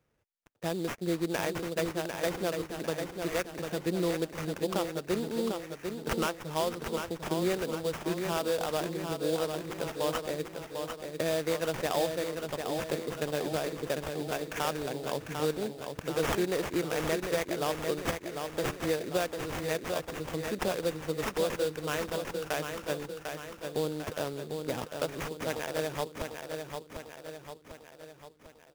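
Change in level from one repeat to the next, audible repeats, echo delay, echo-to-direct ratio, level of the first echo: -5.5 dB, 6, 748 ms, -4.5 dB, -6.0 dB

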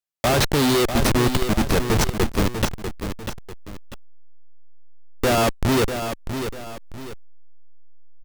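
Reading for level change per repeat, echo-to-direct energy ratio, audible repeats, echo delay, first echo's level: -9.0 dB, -8.0 dB, 2, 645 ms, -8.5 dB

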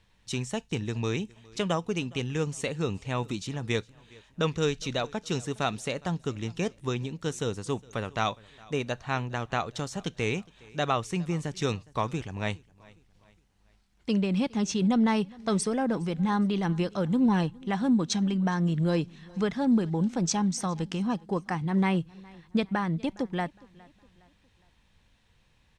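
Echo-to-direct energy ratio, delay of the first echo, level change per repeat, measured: -23.0 dB, 412 ms, -7.5 dB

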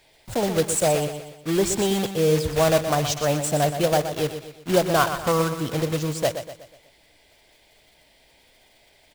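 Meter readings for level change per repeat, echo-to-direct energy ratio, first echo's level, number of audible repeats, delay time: -7.0 dB, -8.5 dB, -9.5 dB, 4, 122 ms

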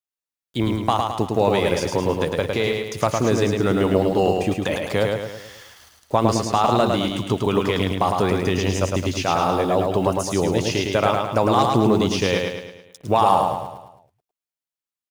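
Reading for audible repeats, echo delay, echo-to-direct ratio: 5, 107 ms, -2.5 dB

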